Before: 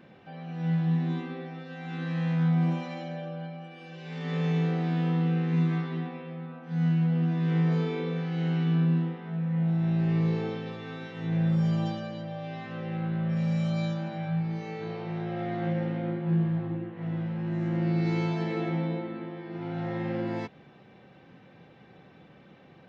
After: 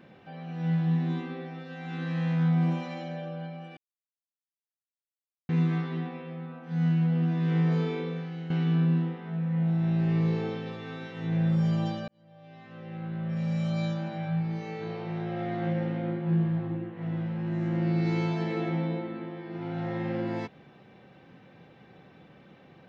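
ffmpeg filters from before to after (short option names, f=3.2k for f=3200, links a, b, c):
-filter_complex "[0:a]asplit=5[a][b][c][d][e];[a]atrim=end=3.77,asetpts=PTS-STARTPTS,afade=t=out:st=3.766:d=0.004:c=hsin[f];[b]atrim=start=3.77:end=5.49,asetpts=PTS-STARTPTS,volume=0[g];[c]atrim=start=5.49:end=8.5,asetpts=PTS-STARTPTS,afade=t=in:d=0.004:c=hsin,afade=t=out:st=2.41:d=0.6:silence=0.281838[h];[d]atrim=start=8.5:end=12.08,asetpts=PTS-STARTPTS,afade=t=in:d=0.004:c=hsin:silence=0.281838,afade=t=out:st=3.576:d=0.004:c=hsin[i];[e]atrim=start=12.08,asetpts=PTS-STARTPTS,afade=t=in:d=1.78[j];[f][g][h][i][j]concat=n=5:v=0:a=1"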